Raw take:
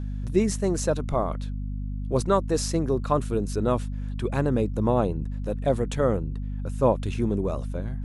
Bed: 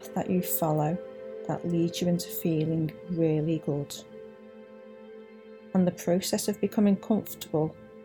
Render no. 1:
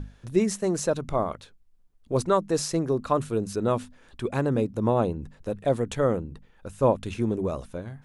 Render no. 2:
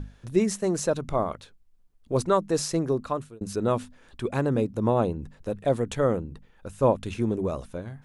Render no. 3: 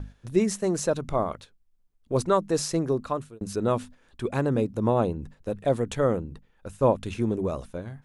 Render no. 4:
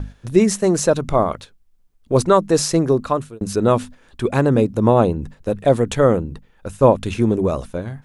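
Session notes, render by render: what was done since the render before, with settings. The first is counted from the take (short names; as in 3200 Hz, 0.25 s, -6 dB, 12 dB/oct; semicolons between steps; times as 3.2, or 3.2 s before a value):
notches 50/100/150/200/250 Hz
2.92–3.41 fade out
gate -43 dBFS, range -6 dB
gain +9 dB; limiter -2 dBFS, peak gain reduction 1 dB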